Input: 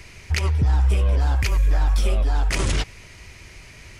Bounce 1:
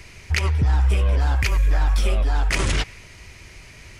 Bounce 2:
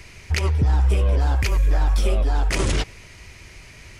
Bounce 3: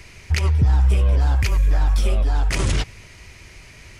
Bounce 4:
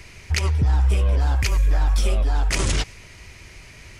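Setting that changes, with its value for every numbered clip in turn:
dynamic EQ, frequency: 1900, 400, 110, 6900 Hz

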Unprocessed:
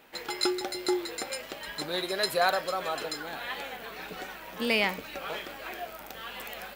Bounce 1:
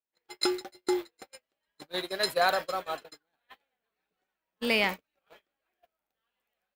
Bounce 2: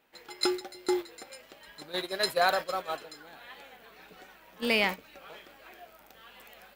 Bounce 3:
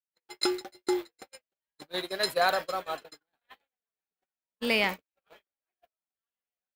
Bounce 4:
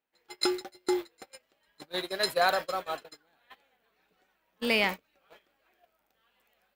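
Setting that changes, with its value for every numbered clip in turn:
gate, range: -44, -12, -60, -31 dB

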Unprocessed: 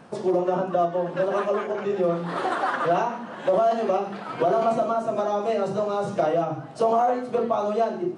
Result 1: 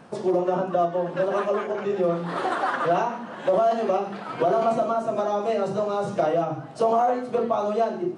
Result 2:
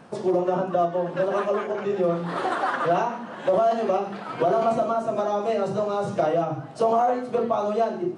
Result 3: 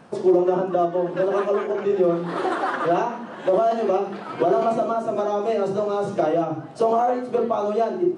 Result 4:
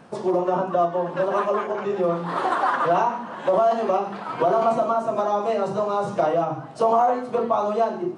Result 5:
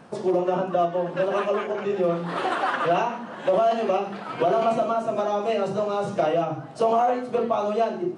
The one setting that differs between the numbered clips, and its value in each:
dynamic EQ, frequency: 9500, 100, 350, 1000, 2700 Hz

